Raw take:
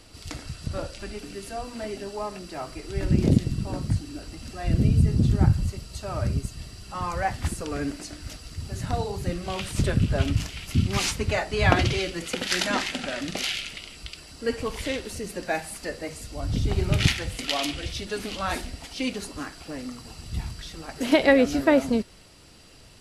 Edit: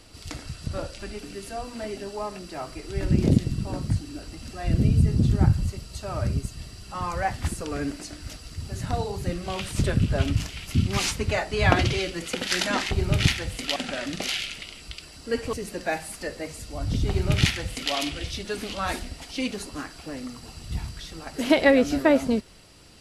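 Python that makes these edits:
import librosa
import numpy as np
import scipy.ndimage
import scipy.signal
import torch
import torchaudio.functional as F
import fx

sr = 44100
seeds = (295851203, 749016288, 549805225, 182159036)

y = fx.edit(x, sr, fx.cut(start_s=14.68, length_s=0.47),
    fx.duplicate(start_s=16.71, length_s=0.85, to_s=12.91), tone=tone)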